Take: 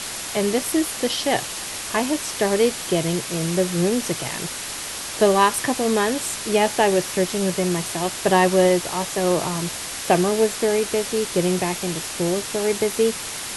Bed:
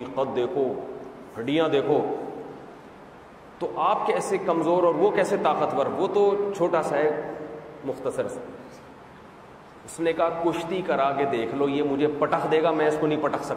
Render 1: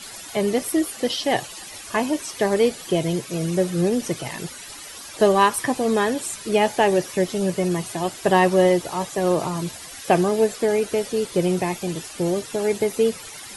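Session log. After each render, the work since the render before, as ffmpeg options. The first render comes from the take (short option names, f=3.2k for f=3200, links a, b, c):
-af "afftdn=nr=13:nf=-31"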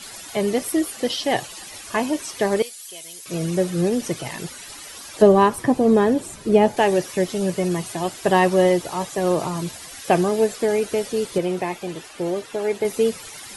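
-filter_complex "[0:a]asettb=1/sr,asplit=3[a][b][c];[a]atrim=end=2.624[d];[b]atrim=start=2.62:end=3.26,asetpts=PTS-STARTPTS,afade=t=in:d=0.004:c=qsin,afade=t=out:st=0.636:d=0.004:c=qsin,aderivative[e];[c]atrim=start=3.256[f];[d][e]acrossfade=d=0.004:c1=hsin:c2=qsin[g];[g][f]acrossfade=d=0.004:c1=qsin:c2=hsin,asettb=1/sr,asplit=3[h][i][j];[h]atrim=end=5.224[k];[i]atrim=start=5.22:end=6.77,asetpts=PTS-STARTPTS,afade=t=in:d=0.004:c=qsin,afade=t=out:st=1.546:d=0.004:c=qsin,tiltshelf=f=900:g=7.5[l];[j]atrim=start=6.766[m];[k][l]acrossfade=d=0.004:c1=hsin:c2=qsin[n];[n][m]acrossfade=d=0.004:c1=qsin:c2=hsin,asettb=1/sr,asplit=3[o][p][q];[o]atrim=end=11.384[r];[p]atrim=start=11.38:end=12.85,asetpts=PTS-STARTPTS,afade=t=in:d=0.004:c=qsin,afade=t=out:st=1.466:d=0.004:c=qsin,bass=f=250:g=-8,treble=f=4k:g=-8[s];[q]atrim=start=12.846[t];[r][s]acrossfade=d=0.004:c1=hsin:c2=qsin[u];[u][t]acrossfade=d=0.004:c1=qsin:c2=hsin"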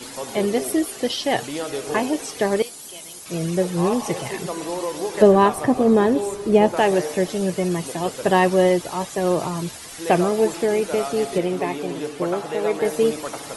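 -filter_complex "[1:a]volume=-6.5dB[a];[0:a][a]amix=inputs=2:normalize=0"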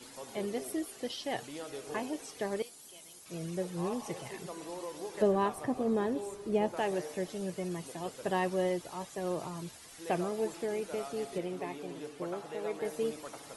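-af "volume=-14.5dB"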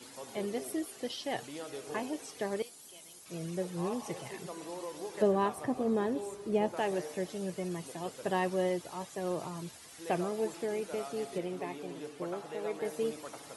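-af "highpass=64"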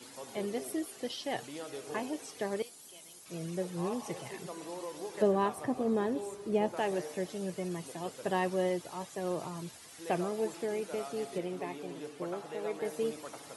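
-af "highpass=61"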